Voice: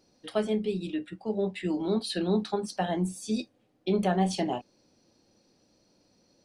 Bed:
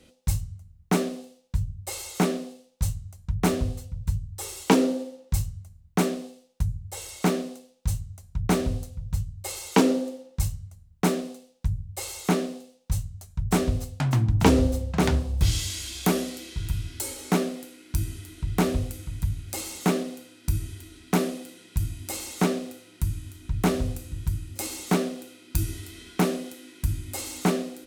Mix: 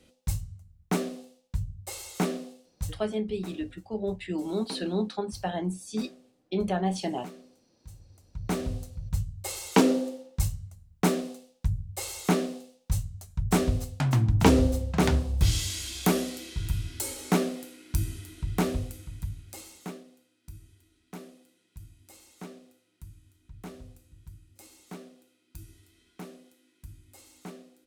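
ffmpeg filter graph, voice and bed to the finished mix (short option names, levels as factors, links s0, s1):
-filter_complex "[0:a]adelay=2650,volume=0.794[s0];[1:a]volume=5.96,afade=t=out:st=2.66:d=0.54:silence=0.149624,afade=t=in:st=7.94:d=1.28:silence=0.1,afade=t=out:st=18.07:d=1.95:silence=0.112202[s1];[s0][s1]amix=inputs=2:normalize=0"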